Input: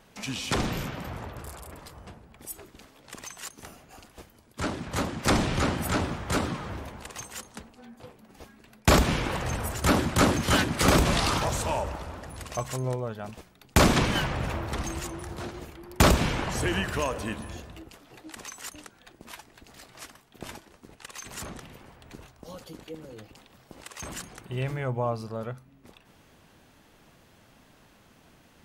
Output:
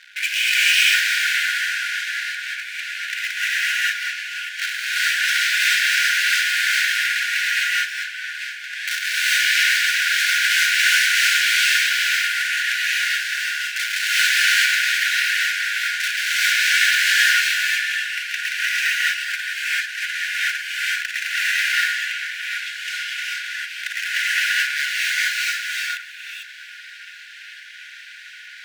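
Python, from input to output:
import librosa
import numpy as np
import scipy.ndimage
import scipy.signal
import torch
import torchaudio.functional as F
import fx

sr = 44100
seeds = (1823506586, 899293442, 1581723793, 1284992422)

p1 = scipy.signal.sosfilt(scipy.signal.butter(4, 2700.0, 'lowpass', fs=sr, output='sos'), x)
p2 = fx.over_compress(p1, sr, threshold_db=-31.0, ratio=-1.0)
p3 = p1 + (p2 * 10.0 ** (-0.5 / 20.0))
p4 = fx.leveller(p3, sr, passes=5)
p5 = np.clip(p4, -10.0 ** (-15.5 / 20.0), 10.0 ** (-15.5 / 20.0))
p6 = fx.brickwall_highpass(p5, sr, low_hz=1400.0)
p7 = p6 + fx.echo_feedback(p6, sr, ms=827, feedback_pct=45, wet_db=-24.0, dry=0)
p8 = fx.rev_gated(p7, sr, seeds[0], gate_ms=470, shape='rising', drr_db=-7.5)
y = p8 * 10.0 ** (-2.0 / 20.0)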